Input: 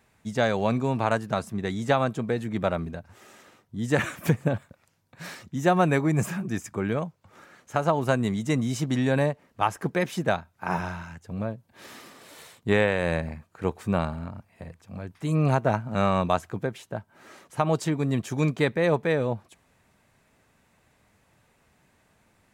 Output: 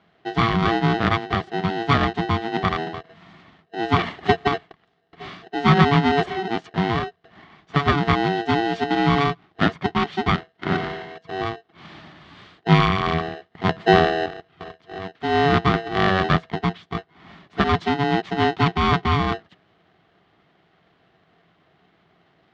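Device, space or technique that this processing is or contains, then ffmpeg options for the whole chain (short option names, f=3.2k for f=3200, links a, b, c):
ring modulator pedal into a guitar cabinet: -filter_complex "[0:a]asettb=1/sr,asplit=3[a][b][c];[a]atrim=end=13.694[d];[b]atrim=start=13.69:end=14.26,asetpts=PTS-STARTPTS,afade=t=in:d=0.004:c=qsin,afade=t=out:st=0.566:d=0.004:c=qsin,lowshelf=f=270:g=10.5[e];[c]atrim=start=14.256[f];[d][e]acrossfade=d=0.004:c1=hsin:c2=qsin[g];[g][f]acrossfade=d=0.004:c1=qsin:c2=hsin,aeval=exprs='val(0)*sgn(sin(2*PI*570*n/s))':c=same,highpass=81,equalizer=f=91:t=q:w=4:g=3,equalizer=f=170:t=q:w=4:g=10,equalizer=f=500:t=q:w=4:g=-8,equalizer=f=930:t=q:w=4:g=-6,equalizer=f=1.5k:t=q:w=4:g=-4,equalizer=f=2.5k:t=q:w=4:g=-8,lowpass=f=3.5k:w=0.5412,lowpass=f=3.5k:w=1.3066,volume=6.5dB"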